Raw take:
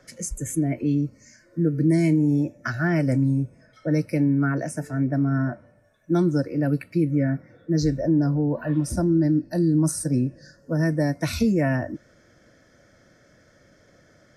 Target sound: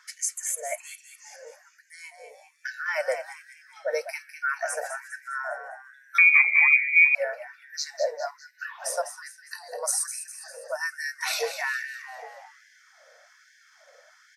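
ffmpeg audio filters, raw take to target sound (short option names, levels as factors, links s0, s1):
-filter_complex "[0:a]asplit=3[s0][s1][s2];[s0]afade=t=out:st=1.62:d=0.02[s3];[s1]acompressor=threshold=0.02:ratio=2.5,afade=t=in:st=1.62:d=0.02,afade=t=out:st=2.87:d=0.02[s4];[s2]afade=t=in:st=2.87:d=0.02[s5];[s3][s4][s5]amix=inputs=3:normalize=0,asplit=2[s6][s7];[s7]asplit=5[s8][s9][s10][s11][s12];[s8]adelay=202,afreqshift=55,volume=0.335[s13];[s9]adelay=404,afreqshift=110,volume=0.157[s14];[s10]adelay=606,afreqshift=165,volume=0.0741[s15];[s11]adelay=808,afreqshift=220,volume=0.0347[s16];[s12]adelay=1010,afreqshift=275,volume=0.0164[s17];[s13][s14][s15][s16][s17]amix=inputs=5:normalize=0[s18];[s6][s18]amix=inputs=2:normalize=0,asettb=1/sr,asplit=3[s19][s20][s21];[s19]atrim=end=6.184[s22];[s20]atrim=start=6.18:end=7.15,asetpts=PTS-STARTPTS,afade=t=in:d=0.004:c=qsin,afade=t=out:st=0.966:d=0.004:c=qsin,lowpass=f=2200:t=q:w=0.5098,lowpass=f=2200:t=q:w=0.6013,lowpass=f=2200:t=q:w=0.9,lowpass=f=2200:t=q:w=2.563,afreqshift=-2600[s23];[s21]atrim=start=7.146[s24];[s22][s23]acrossfade=d=0.004:c1=hsin:c2=qsin[s25];[s25][s24]acrossfade=d=0.004:c1=qsin:c2=hsin,afftfilt=real='re*gte(b*sr/1024,450*pow(1500/450,0.5+0.5*sin(2*PI*1.2*pts/sr)))':imag='im*gte(b*sr/1024,450*pow(1500/450,0.5+0.5*sin(2*PI*1.2*pts/sr)))':win_size=1024:overlap=0.75,volume=1.58"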